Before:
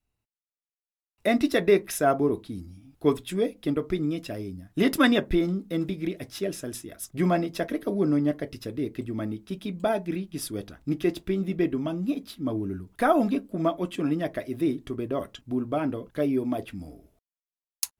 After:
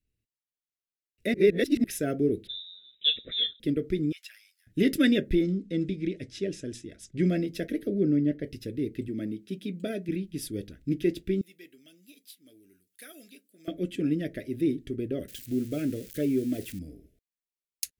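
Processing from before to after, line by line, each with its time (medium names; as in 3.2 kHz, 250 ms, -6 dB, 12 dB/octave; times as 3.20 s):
1.34–1.84 s: reverse
2.47–3.60 s: frequency inversion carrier 3.8 kHz
4.12–4.67 s: steep high-pass 1.2 kHz
5.43–7.29 s: low-pass 8.2 kHz 24 dB/octave
7.87–8.44 s: peaking EQ 12 kHz -12.5 dB 1.8 oct
9.08–10.09 s: high-pass 150 Hz
11.41–13.68 s: differentiator
15.28–16.79 s: zero-crossing glitches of -30.5 dBFS
whole clip: Chebyshev band-stop 470–1900 Hz, order 2; bass shelf 390 Hz +4 dB; trim -3 dB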